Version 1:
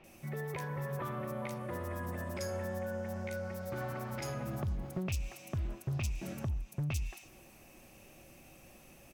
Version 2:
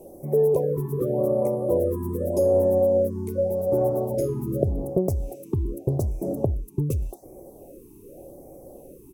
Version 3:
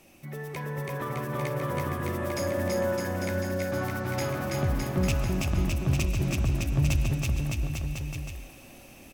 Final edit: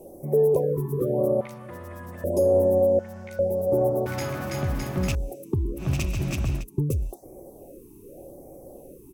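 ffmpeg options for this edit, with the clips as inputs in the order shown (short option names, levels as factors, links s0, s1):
-filter_complex "[0:a]asplit=2[s0][s1];[2:a]asplit=2[s2][s3];[1:a]asplit=5[s4][s5][s6][s7][s8];[s4]atrim=end=1.412[s9];[s0]atrim=start=1.408:end=2.242[s10];[s5]atrim=start=2.238:end=2.992[s11];[s1]atrim=start=2.988:end=3.392[s12];[s6]atrim=start=3.388:end=4.062[s13];[s2]atrim=start=4.058:end=5.152[s14];[s7]atrim=start=5.148:end=5.85[s15];[s3]atrim=start=5.75:end=6.65[s16];[s8]atrim=start=6.55[s17];[s9][s10]acrossfade=d=0.004:c1=hsin:c2=hsin[s18];[s18][s11]acrossfade=d=0.004:c1=hsin:c2=hsin[s19];[s19][s12]acrossfade=d=0.004:c1=hsin:c2=hsin[s20];[s20][s13]acrossfade=d=0.004:c1=hsin:c2=hsin[s21];[s21][s14]acrossfade=d=0.004:c1=hsin:c2=hsin[s22];[s22][s15]acrossfade=d=0.004:c1=hsin:c2=hsin[s23];[s23][s16]acrossfade=d=0.1:c1=tri:c2=tri[s24];[s24][s17]acrossfade=d=0.1:c1=tri:c2=tri"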